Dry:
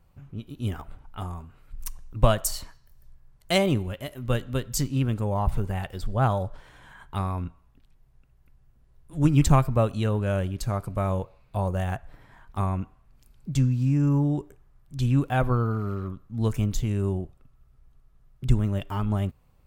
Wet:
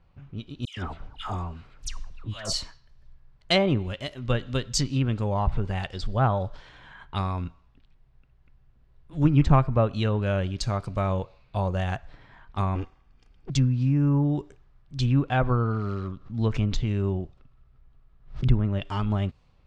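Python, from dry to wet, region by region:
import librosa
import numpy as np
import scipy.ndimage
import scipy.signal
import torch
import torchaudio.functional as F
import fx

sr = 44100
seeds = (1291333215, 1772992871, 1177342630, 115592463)

y = fx.chain(x, sr, fx.low_shelf(hz=420.0, db=-3.0),
    fx.over_compress(threshold_db=-33.0, ratio=-1.0),
    fx.dispersion(late='lows', ms=121.0, hz=1500.0), at=(0.65, 2.53))
y = fx.chain(y, sr, fx.lower_of_two(delay_ms=2.5),
    fx.notch(hz=4000.0, q=8.0), at=(12.75, 13.5))
y = fx.chain(y, sr, fx.median_filter(points=3),
    fx.high_shelf(hz=5900.0, db=-6.0),
    fx.pre_swell(db_per_s=140.0), at=(16.06, 18.85))
y = fx.env_lowpass_down(y, sr, base_hz=1800.0, full_db=-18.0)
y = fx.peak_eq(y, sr, hz=4600.0, db=9.5, octaves=1.7)
y = fx.env_lowpass(y, sr, base_hz=2500.0, full_db=-22.5)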